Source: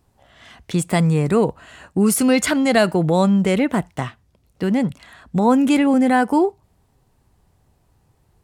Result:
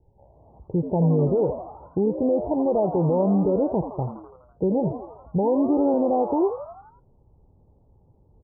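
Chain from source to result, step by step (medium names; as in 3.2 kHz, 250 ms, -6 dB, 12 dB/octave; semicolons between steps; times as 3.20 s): steep low-pass 880 Hz 96 dB/octave; comb 2.1 ms, depth 57%; peak limiter -15 dBFS, peak gain reduction 8 dB; on a send: frequency-shifting echo 83 ms, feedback 55%, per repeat +96 Hz, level -11 dB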